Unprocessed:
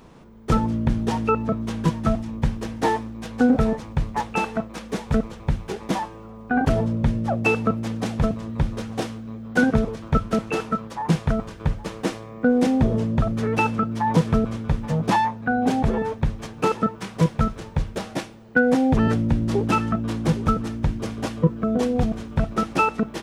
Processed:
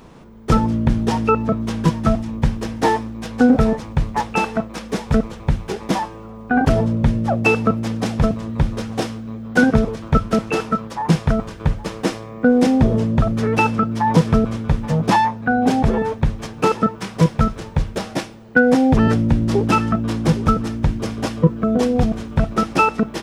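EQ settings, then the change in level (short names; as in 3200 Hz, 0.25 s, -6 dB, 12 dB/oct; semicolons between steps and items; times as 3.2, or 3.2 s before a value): dynamic EQ 5200 Hz, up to +4 dB, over -56 dBFS, Q 7.3; +4.5 dB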